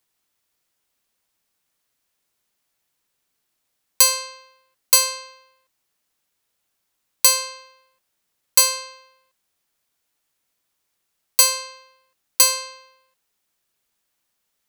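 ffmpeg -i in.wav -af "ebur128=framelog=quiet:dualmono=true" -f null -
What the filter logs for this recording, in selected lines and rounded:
Integrated loudness:
  I:         -14.1 LUFS
  Threshold: -26.9 LUFS
Loudness range:
  LRA:         3.0 LU
  Threshold: -39.5 LUFS
  LRA low:   -21.6 LUFS
  LRA high:  -18.6 LUFS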